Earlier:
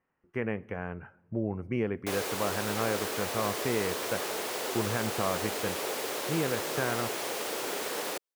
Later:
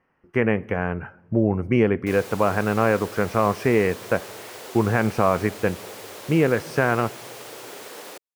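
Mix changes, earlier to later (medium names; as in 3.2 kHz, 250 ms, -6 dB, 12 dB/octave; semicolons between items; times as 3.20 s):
speech +11.5 dB; background -5.0 dB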